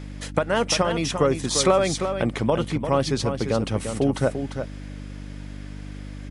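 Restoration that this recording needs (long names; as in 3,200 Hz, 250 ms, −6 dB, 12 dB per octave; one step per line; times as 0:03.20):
hum removal 49.6 Hz, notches 6
echo removal 346 ms −8 dB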